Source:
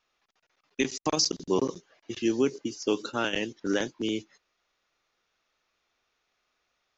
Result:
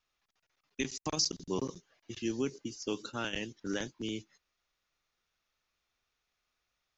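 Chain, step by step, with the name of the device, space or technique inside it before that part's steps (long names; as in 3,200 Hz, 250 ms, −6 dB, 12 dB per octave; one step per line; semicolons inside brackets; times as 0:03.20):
smiley-face EQ (low-shelf EQ 200 Hz +9 dB; parametric band 400 Hz −4.5 dB 2.3 octaves; high-shelf EQ 6,400 Hz +5.5 dB)
level −7 dB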